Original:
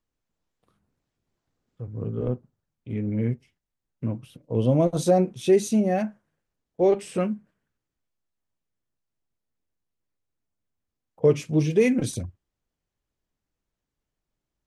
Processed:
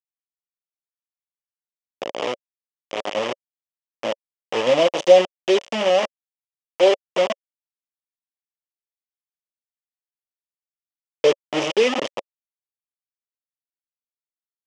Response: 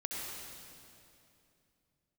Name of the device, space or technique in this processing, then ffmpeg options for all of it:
hand-held game console: -af "acrusher=bits=3:mix=0:aa=0.000001,highpass=450,equalizer=f=560:t=q:w=4:g=9,equalizer=f=1.5k:t=q:w=4:g=-8,equalizer=f=3k:t=q:w=4:g=7,equalizer=f=4.2k:t=q:w=4:g=-9,lowpass=f=5.8k:w=0.5412,lowpass=f=5.8k:w=1.3066,volume=3dB"

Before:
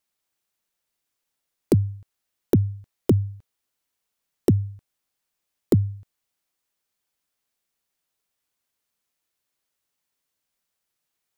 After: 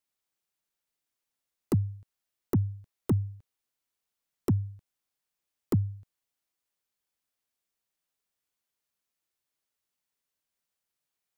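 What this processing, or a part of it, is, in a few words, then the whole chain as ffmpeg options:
one-band saturation: -filter_complex "[0:a]acrossover=split=240|4500[a][b][c];[b]asoftclip=type=tanh:threshold=-19dB[d];[a][d][c]amix=inputs=3:normalize=0,volume=-6dB"

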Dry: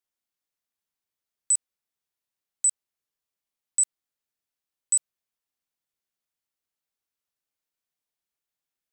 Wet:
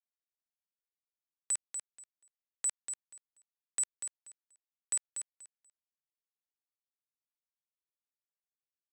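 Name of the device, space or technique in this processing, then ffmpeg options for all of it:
pocket radio on a weak battery: -af "highpass=400,lowpass=4.2k,lowshelf=f=430:g=11.5,aeval=exprs='sgn(val(0))*max(abs(val(0))-0.00158,0)':c=same,equalizer=f=1.8k:t=o:w=0.77:g=5.5,aecho=1:1:241|482|723:0.422|0.0801|0.0152,volume=3dB"

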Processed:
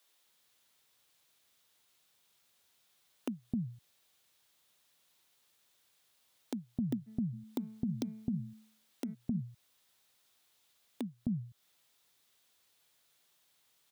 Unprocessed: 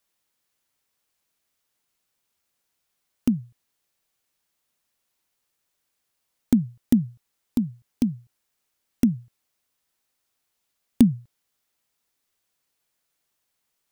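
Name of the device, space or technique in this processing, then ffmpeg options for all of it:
broadcast voice chain: -filter_complex "[0:a]asplit=3[a][b][c];[a]afade=t=out:st=7.06:d=0.02[d];[b]bandreject=f=218.2:t=h:w=4,bandreject=f=436.4:t=h:w=4,bandreject=f=654.6:t=h:w=4,bandreject=f=872.8:t=h:w=4,bandreject=f=1.091k:t=h:w=4,bandreject=f=1.3092k:t=h:w=4,bandreject=f=1.5274k:t=h:w=4,bandreject=f=1.7456k:t=h:w=4,bandreject=f=1.9638k:t=h:w=4,bandreject=f=2.182k:t=h:w=4,bandreject=f=2.4002k:t=h:w=4,afade=t=in:st=7.06:d=0.02,afade=t=out:st=9.13:d=0.02[e];[c]afade=t=in:st=9.13:d=0.02[f];[d][e][f]amix=inputs=3:normalize=0,highpass=80,acrossover=split=260[g][h];[g]adelay=260[i];[i][h]amix=inputs=2:normalize=0,deesser=0.6,acompressor=threshold=-35dB:ratio=5,equalizer=f=3.6k:t=o:w=0.52:g=6,alimiter=level_in=4dB:limit=-24dB:level=0:latency=1:release=57,volume=-4dB,volume=4.5dB"

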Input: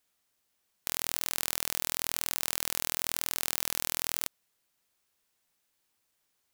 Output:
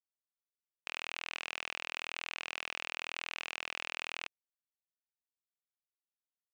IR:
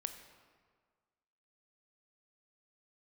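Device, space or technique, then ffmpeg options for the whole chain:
pocket radio on a weak battery: -af "highpass=340,lowpass=3k,aeval=exprs='sgn(val(0))*max(abs(val(0))-0.00398,0)':c=same,equalizer=f=2.6k:t=o:w=0.48:g=11.5,volume=-3.5dB"

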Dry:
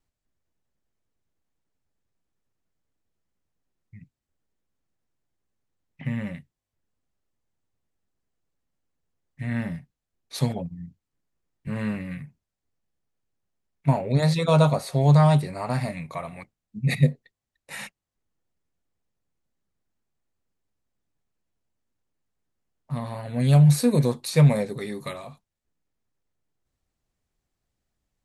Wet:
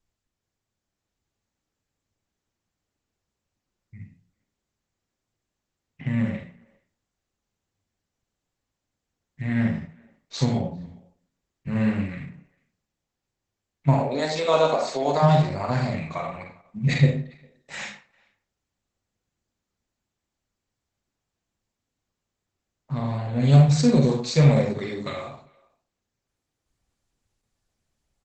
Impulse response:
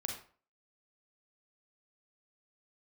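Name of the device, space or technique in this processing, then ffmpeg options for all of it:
speakerphone in a meeting room: -filter_complex "[0:a]asplit=3[a][b][c];[a]afade=t=out:st=13.93:d=0.02[d];[b]highpass=f=270:w=0.5412,highpass=f=270:w=1.3066,afade=t=in:st=13.93:d=0.02,afade=t=out:st=15.22:d=0.02[e];[c]afade=t=in:st=15.22:d=0.02[f];[d][e][f]amix=inputs=3:normalize=0,highshelf=f=7.5k:g=4.5[g];[1:a]atrim=start_sample=2205[h];[g][h]afir=irnorm=-1:irlink=0,asplit=2[i][j];[j]adelay=400,highpass=300,lowpass=3.4k,asoftclip=type=hard:threshold=-16dB,volume=-27dB[k];[i][k]amix=inputs=2:normalize=0,dynaudnorm=f=530:g=3:m=3dB" -ar 48000 -c:a libopus -b:a 12k

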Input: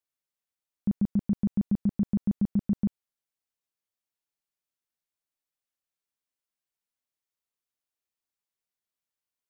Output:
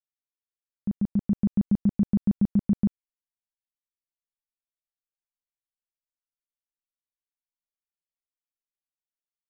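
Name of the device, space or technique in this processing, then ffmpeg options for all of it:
voice memo with heavy noise removal: -af "anlmdn=0.000398,dynaudnorm=f=230:g=9:m=10dB,volume=-6.5dB"

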